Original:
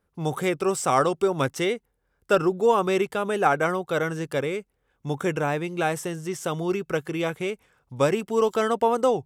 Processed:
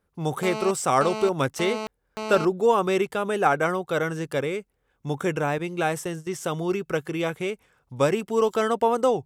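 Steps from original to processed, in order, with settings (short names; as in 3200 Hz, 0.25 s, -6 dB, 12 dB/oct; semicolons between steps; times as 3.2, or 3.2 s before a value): 0.43–2.45 GSM buzz -31 dBFS; 5.58–6.27 gate -34 dBFS, range -14 dB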